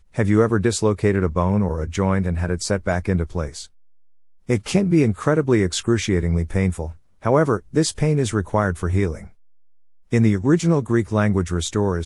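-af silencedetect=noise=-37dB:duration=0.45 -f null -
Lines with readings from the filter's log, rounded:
silence_start: 3.66
silence_end: 4.49 | silence_duration: 0.83
silence_start: 9.29
silence_end: 10.12 | silence_duration: 0.83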